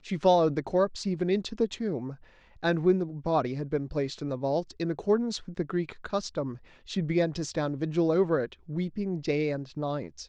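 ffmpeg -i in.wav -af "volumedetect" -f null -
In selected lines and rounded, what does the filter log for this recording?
mean_volume: -28.7 dB
max_volume: -10.5 dB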